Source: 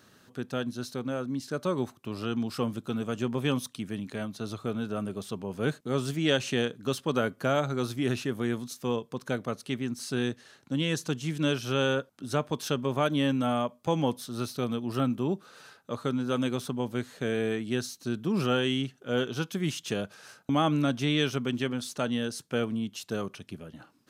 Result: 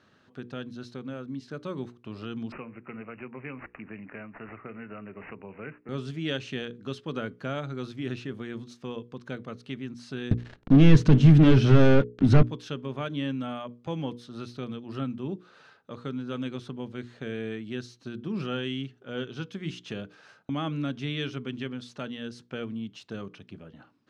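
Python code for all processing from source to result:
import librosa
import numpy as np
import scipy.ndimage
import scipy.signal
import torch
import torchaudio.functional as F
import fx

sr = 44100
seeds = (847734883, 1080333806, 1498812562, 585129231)

y = fx.chain(x, sr, fx.low_shelf(hz=440.0, db=-10.0),
    fx.resample_bad(factor=8, down='none', up='filtered'),
    fx.band_squash(depth_pct=70), at=(2.52, 5.89))
y = fx.chain(y, sr, fx.leveller(passes=5),
    fx.tilt_eq(slope=-3.0), at=(10.31, 12.43))
y = scipy.signal.sosfilt(scipy.signal.butter(2, 3600.0, 'lowpass', fs=sr, output='sos'), y)
y = fx.hum_notches(y, sr, base_hz=60, count=8)
y = fx.dynamic_eq(y, sr, hz=780.0, q=0.82, threshold_db=-43.0, ratio=4.0, max_db=-7)
y = F.gain(torch.from_numpy(y), -2.5).numpy()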